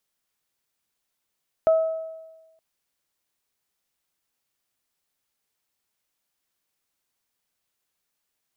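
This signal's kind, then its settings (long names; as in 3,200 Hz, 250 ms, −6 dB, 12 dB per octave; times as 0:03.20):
harmonic partials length 0.92 s, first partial 645 Hz, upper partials −18 dB, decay 1.19 s, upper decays 0.84 s, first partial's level −13 dB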